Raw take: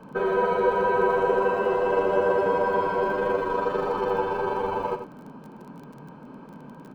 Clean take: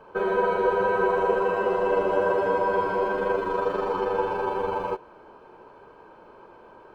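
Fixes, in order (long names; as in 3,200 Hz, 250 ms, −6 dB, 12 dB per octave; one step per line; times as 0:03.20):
click removal
noise reduction from a noise print 6 dB
echo removal 89 ms −9 dB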